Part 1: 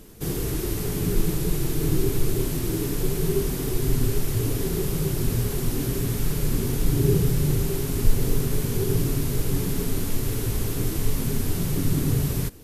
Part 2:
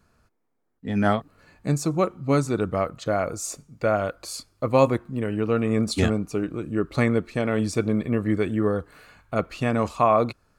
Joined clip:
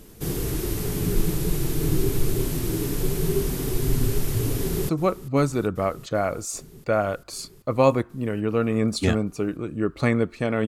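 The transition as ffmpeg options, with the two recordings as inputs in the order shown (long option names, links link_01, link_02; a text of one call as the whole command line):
ffmpeg -i cue0.wav -i cue1.wav -filter_complex "[0:a]apad=whole_dur=10.67,atrim=end=10.67,atrim=end=4.892[link_01];[1:a]atrim=start=1.838:end=7.62[link_02];[link_01][link_02]acrossfade=duration=0.004:curve1=hsin:curve2=hsin,asplit=2[link_03][link_04];[link_04]afade=type=in:start_time=4.58:duration=0.01,afade=type=out:start_time=4.89:duration=0.01,aecho=0:1:390|780|1170|1560|1950|2340|2730|3120|3510|3900|4290|4680:0.141254|0.120066|0.102056|0.0867475|0.0737353|0.062675|0.0532738|0.0452827|0.0384903|0.0327168|0.0278092|0.0236379[link_05];[link_03][link_05]amix=inputs=2:normalize=0" out.wav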